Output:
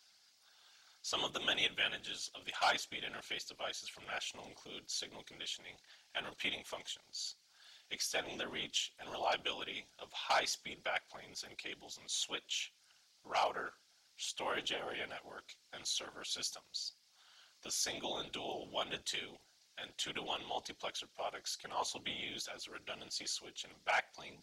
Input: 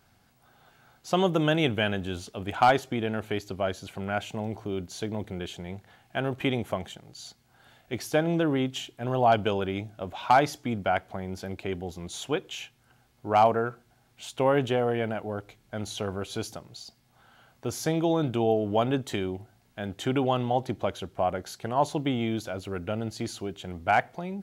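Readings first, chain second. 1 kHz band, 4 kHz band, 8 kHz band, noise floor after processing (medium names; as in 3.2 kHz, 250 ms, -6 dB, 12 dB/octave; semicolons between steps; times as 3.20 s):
-13.5 dB, -0.5 dB, +0.5 dB, -70 dBFS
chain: band-pass filter 5.1 kHz, Q 2.1; dynamic bell 5.1 kHz, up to -6 dB, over -57 dBFS, Q 1.4; whisper effect; trim +8.5 dB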